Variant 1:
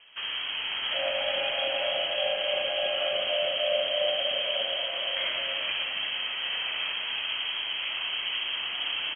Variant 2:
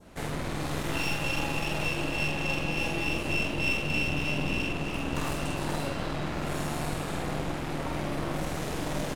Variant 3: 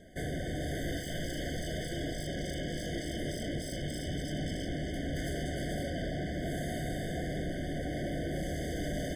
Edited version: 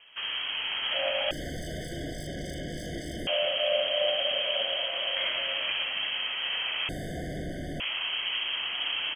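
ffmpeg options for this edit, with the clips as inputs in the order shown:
-filter_complex "[2:a]asplit=2[a][b];[0:a]asplit=3[c][d][e];[c]atrim=end=1.312[f];[a]atrim=start=1.308:end=3.272[g];[d]atrim=start=3.268:end=6.892[h];[b]atrim=start=6.888:end=7.802[i];[e]atrim=start=7.798[j];[f][g]acrossfade=d=0.004:c1=hsin:c2=hsin[k];[k][h]acrossfade=d=0.004:c1=hsin:c2=hsin[l];[l][i]acrossfade=d=0.004:c1=hsin:c2=hsin[m];[m][j]acrossfade=d=0.004:c1=hsin:c2=hsin"

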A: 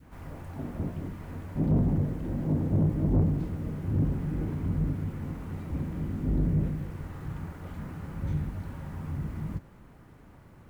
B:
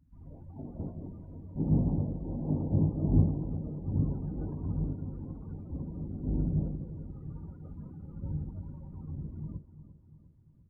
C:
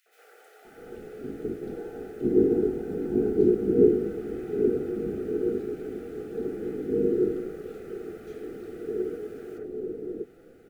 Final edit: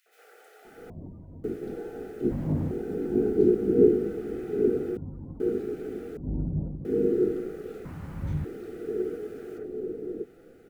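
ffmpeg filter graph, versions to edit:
-filter_complex "[1:a]asplit=3[a][b][c];[0:a]asplit=2[d][e];[2:a]asplit=6[f][g][h][i][j][k];[f]atrim=end=0.902[l];[a]atrim=start=0.898:end=1.442[m];[g]atrim=start=1.438:end=2.312[n];[d]atrim=start=2.308:end=2.712[o];[h]atrim=start=2.708:end=4.972[p];[b]atrim=start=4.968:end=5.402[q];[i]atrim=start=5.398:end=6.172[r];[c]atrim=start=6.168:end=6.852[s];[j]atrim=start=6.848:end=7.852[t];[e]atrim=start=7.848:end=8.452[u];[k]atrim=start=8.448[v];[l][m]acrossfade=d=0.004:c1=hsin:c2=hsin[w];[w][n]acrossfade=d=0.004:c1=hsin:c2=hsin[x];[x][o]acrossfade=d=0.004:c1=hsin:c2=hsin[y];[y][p]acrossfade=d=0.004:c1=hsin:c2=hsin[z];[z][q]acrossfade=d=0.004:c1=hsin:c2=hsin[aa];[aa][r]acrossfade=d=0.004:c1=hsin:c2=hsin[ab];[ab][s]acrossfade=d=0.004:c1=hsin:c2=hsin[ac];[ac][t]acrossfade=d=0.004:c1=hsin:c2=hsin[ad];[ad][u]acrossfade=d=0.004:c1=hsin:c2=hsin[ae];[ae][v]acrossfade=d=0.004:c1=hsin:c2=hsin"

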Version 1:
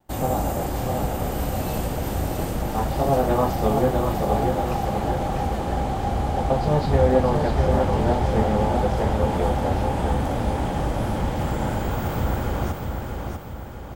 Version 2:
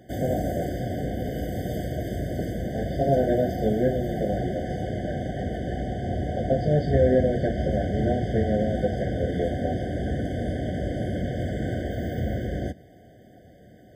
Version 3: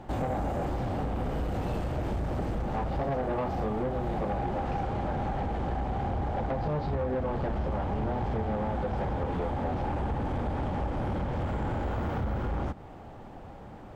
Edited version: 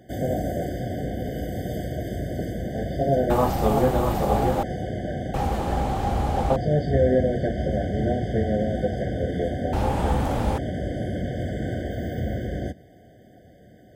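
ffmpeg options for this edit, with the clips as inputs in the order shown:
-filter_complex "[0:a]asplit=3[a][b][c];[1:a]asplit=4[d][e][f][g];[d]atrim=end=3.302[h];[a]atrim=start=3.298:end=4.632[i];[e]atrim=start=4.628:end=5.342[j];[b]atrim=start=5.338:end=6.562[k];[f]atrim=start=6.558:end=9.732[l];[c]atrim=start=9.728:end=10.582[m];[g]atrim=start=10.578[n];[h][i]acrossfade=d=0.004:c1=hsin:c2=hsin[o];[o][j]acrossfade=d=0.004:c1=hsin:c2=hsin[p];[p][k]acrossfade=d=0.004:c1=hsin:c2=hsin[q];[q][l]acrossfade=d=0.004:c1=hsin:c2=hsin[r];[r][m]acrossfade=d=0.004:c1=hsin:c2=hsin[s];[s][n]acrossfade=d=0.004:c1=hsin:c2=hsin"

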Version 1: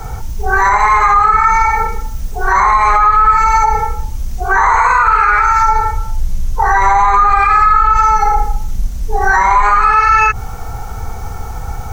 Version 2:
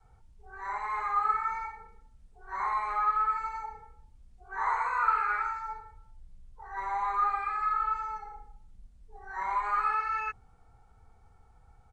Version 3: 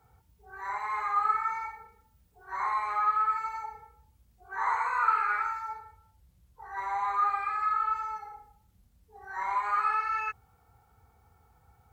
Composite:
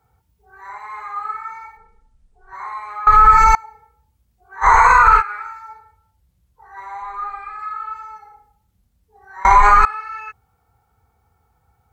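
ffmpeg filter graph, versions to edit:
-filter_complex "[1:a]asplit=2[a][b];[0:a]asplit=3[c][d][e];[2:a]asplit=6[f][g][h][i][j][k];[f]atrim=end=1.772[l];[a]atrim=start=1.768:end=2.532[m];[g]atrim=start=2.528:end=3.072[n];[c]atrim=start=3.068:end=3.552[o];[h]atrim=start=3.548:end=4.67[p];[d]atrim=start=4.61:end=5.23[q];[i]atrim=start=5.17:end=7.022[r];[b]atrim=start=7.018:end=7.592[s];[j]atrim=start=7.588:end=9.452[t];[e]atrim=start=9.448:end=9.852[u];[k]atrim=start=9.848[v];[l][m]acrossfade=d=0.004:c1=hsin:c2=hsin[w];[w][n]acrossfade=d=0.004:c1=hsin:c2=hsin[x];[x][o]acrossfade=d=0.004:c1=hsin:c2=hsin[y];[y][p]acrossfade=d=0.004:c1=hsin:c2=hsin[z];[z][q]acrossfade=d=0.06:c1=tri:c2=tri[aa];[aa][r]acrossfade=d=0.06:c1=tri:c2=tri[ab];[ab][s]acrossfade=d=0.004:c1=hsin:c2=hsin[ac];[ac][t]acrossfade=d=0.004:c1=hsin:c2=hsin[ad];[ad][u]acrossfade=d=0.004:c1=hsin:c2=hsin[ae];[ae][v]acrossfade=d=0.004:c1=hsin:c2=hsin"

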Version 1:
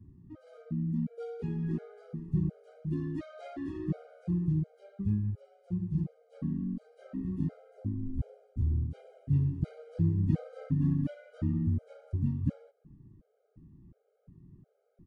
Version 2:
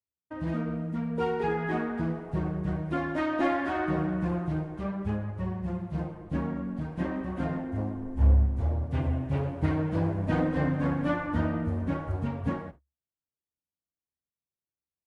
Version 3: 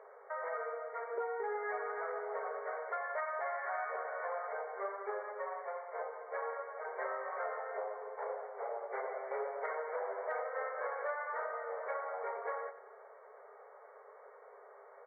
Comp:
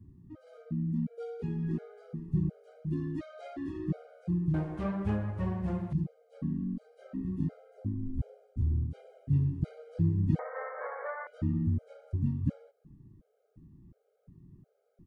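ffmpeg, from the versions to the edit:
-filter_complex "[0:a]asplit=3[a][b][c];[a]atrim=end=4.542[d];[1:a]atrim=start=4.538:end=5.932[e];[b]atrim=start=5.928:end=10.392[f];[2:a]atrim=start=10.388:end=11.272[g];[c]atrim=start=11.268[h];[d][e]acrossfade=d=0.004:c1=hsin:c2=hsin[i];[i][f]acrossfade=d=0.004:c1=hsin:c2=hsin[j];[j][g]acrossfade=d=0.004:c1=hsin:c2=hsin[k];[k][h]acrossfade=d=0.004:c1=hsin:c2=hsin"

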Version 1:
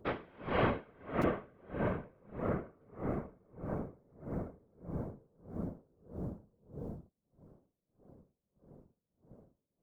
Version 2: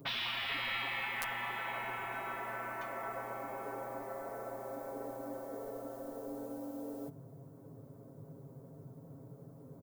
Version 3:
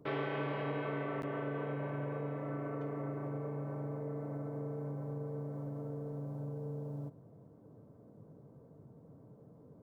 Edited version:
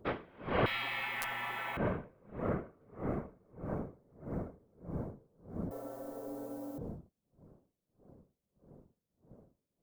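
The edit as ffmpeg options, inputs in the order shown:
-filter_complex "[1:a]asplit=2[a][b];[0:a]asplit=3[c][d][e];[c]atrim=end=0.662[f];[a]atrim=start=0.658:end=1.772[g];[d]atrim=start=1.768:end=5.712[h];[b]atrim=start=5.708:end=6.782[i];[e]atrim=start=6.778[j];[f][g]acrossfade=d=0.004:c1=hsin:c2=hsin[k];[k][h]acrossfade=d=0.004:c1=hsin:c2=hsin[l];[l][i]acrossfade=d=0.004:c1=hsin:c2=hsin[m];[m][j]acrossfade=d=0.004:c1=hsin:c2=hsin"

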